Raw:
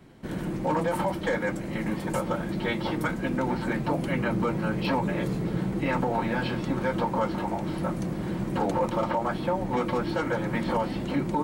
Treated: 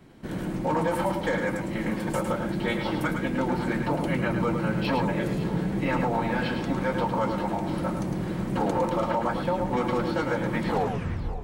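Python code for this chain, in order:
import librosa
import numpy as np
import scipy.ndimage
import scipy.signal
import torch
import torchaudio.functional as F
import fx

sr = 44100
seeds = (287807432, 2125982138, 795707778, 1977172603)

y = fx.tape_stop_end(x, sr, length_s=0.76)
y = fx.echo_multitap(y, sr, ms=(107, 540, 563), db=(-6.5, -18.5, -16.0))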